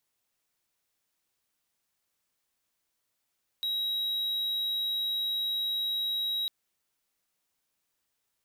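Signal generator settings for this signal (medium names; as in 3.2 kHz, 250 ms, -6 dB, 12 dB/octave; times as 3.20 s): tone triangle 3.84 kHz -26 dBFS 2.85 s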